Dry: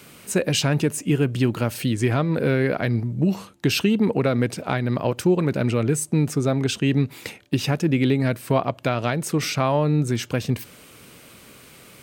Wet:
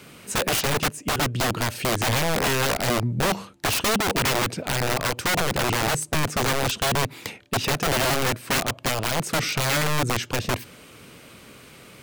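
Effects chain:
high-shelf EQ 7,600 Hz −7.5 dB
wrap-around overflow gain 18.5 dB
0:00.60–0:01.41: expander for the loud parts 1.5 to 1, over −36 dBFS
level +1.5 dB

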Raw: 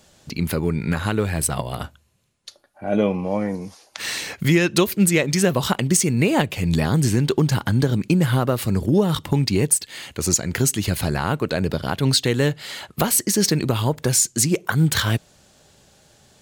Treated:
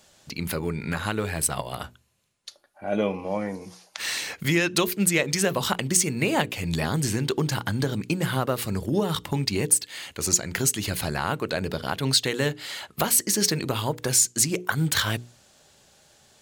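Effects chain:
low-shelf EQ 420 Hz −6.5 dB
mains-hum notches 60/120/180/240/300/360/420/480 Hz
level −1.5 dB

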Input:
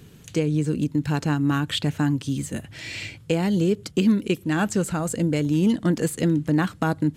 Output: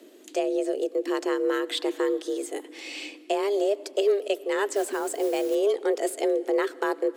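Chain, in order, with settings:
frequency shifter +200 Hz
0:04.73–0:05.55: noise that follows the level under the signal 21 dB
comb and all-pass reverb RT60 2.9 s, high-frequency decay 0.7×, pre-delay 55 ms, DRR 20 dB
level −3.5 dB

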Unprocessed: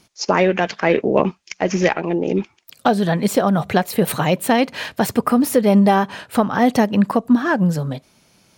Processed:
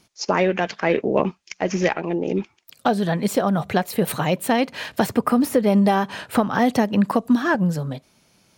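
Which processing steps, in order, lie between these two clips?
0:04.93–0:07.55: multiband upward and downward compressor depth 70%
level −3.5 dB

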